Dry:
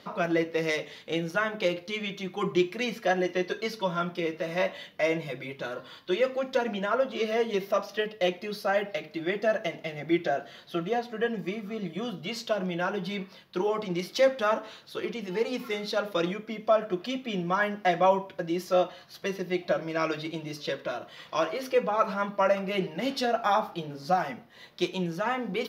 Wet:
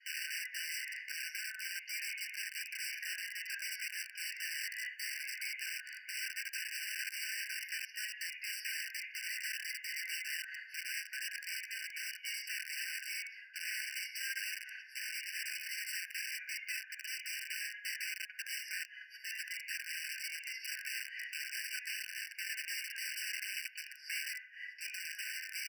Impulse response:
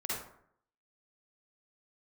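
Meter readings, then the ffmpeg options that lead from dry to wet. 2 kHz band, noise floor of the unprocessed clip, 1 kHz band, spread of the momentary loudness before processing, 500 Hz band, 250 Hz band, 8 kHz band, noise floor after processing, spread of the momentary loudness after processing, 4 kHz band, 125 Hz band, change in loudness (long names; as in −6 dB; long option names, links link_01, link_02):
−3.5 dB, −52 dBFS, below −40 dB, 9 LU, below −40 dB, below −40 dB, +6.5 dB, −55 dBFS, 3 LU, −3.5 dB, below −40 dB, −10.0 dB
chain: -filter_complex "[0:a]acrossover=split=570 2800:gain=0.126 1 0.178[link_01][link_02][link_03];[link_01][link_02][link_03]amix=inputs=3:normalize=0,acompressor=threshold=-35dB:ratio=16,alimiter=level_in=12.5dB:limit=-24dB:level=0:latency=1:release=13,volume=-12.5dB,agate=range=-33dB:threshold=-54dB:ratio=3:detection=peak,lowshelf=frequency=140:width_type=q:width=1.5:gain=-13.5,bandreject=frequency=60:width_type=h:width=6,bandreject=frequency=120:width_type=h:width=6,bandreject=frequency=180:width_type=h:width=6,bandreject=frequency=240:width_type=h:width=6,bandreject=frequency=300:width_type=h:width=6,bandreject=frequency=360:width_type=h:width=6,aecho=1:1:639:0.126,asplit=2[link_04][link_05];[1:a]atrim=start_sample=2205[link_06];[link_05][link_06]afir=irnorm=-1:irlink=0,volume=-6dB[link_07];[link_04][link_07]amix=inputs=2:normalize=0,aeval=exprs='(mod(66.8*val(0)+1,2)-1)/66.8':channel_layout=same,afftfilt=real='re*eq(mod(floor(b*sr/1024/1500),2),1)':imag='im*eq(mod(floor(b*sr/1024/1500),2),1)':win_size=1024:overlap=0.75,volume=5.5dB"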